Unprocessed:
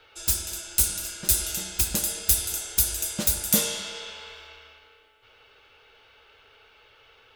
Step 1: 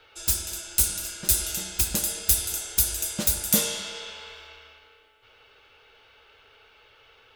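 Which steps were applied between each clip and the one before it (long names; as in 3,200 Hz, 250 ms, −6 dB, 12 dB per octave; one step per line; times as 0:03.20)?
no processing that can be heard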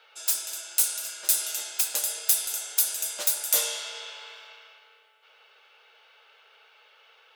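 high-pass filter 510 Hz 24 dB per octave
level −1 dB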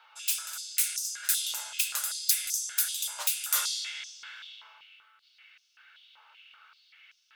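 high-pass on a step sequencer 5.2 Hz 960–5,700 Hz
level −4.5 dB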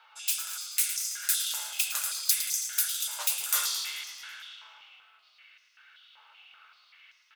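echo with shifted repeats 109 ms, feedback 62%, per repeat −46 Hz, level −10.5 dB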